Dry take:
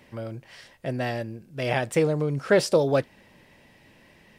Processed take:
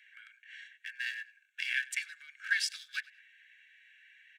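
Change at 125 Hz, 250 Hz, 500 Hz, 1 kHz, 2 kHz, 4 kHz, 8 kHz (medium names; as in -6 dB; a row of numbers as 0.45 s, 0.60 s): under -40 dB, under -40 dB, under -40 dB, -28.5 dB, 0.0 dB, -2.0 dB, -4.5 dB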